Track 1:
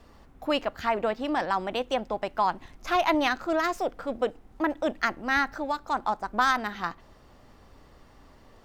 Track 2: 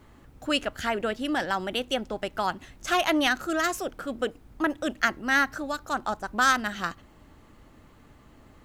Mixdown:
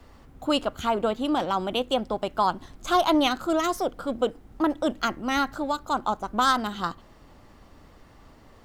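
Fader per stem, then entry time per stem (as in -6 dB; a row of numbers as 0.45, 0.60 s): +0.5, -3.5 dB; 0.00, 0.00 s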